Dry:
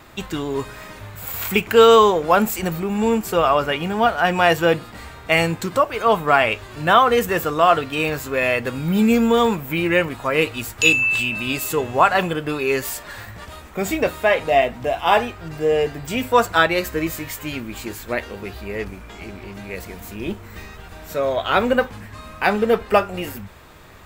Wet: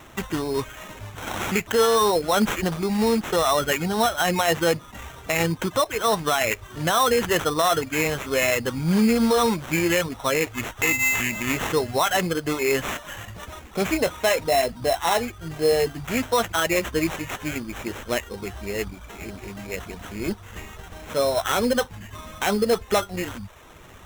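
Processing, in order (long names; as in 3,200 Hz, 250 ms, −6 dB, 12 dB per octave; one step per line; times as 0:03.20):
reverb reduction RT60 0.54 s
brickwall limiter −11.5 dBFS, peak gain reduction 9.5 dB
sample-rate reduction 4,700 Hz, jitter 0%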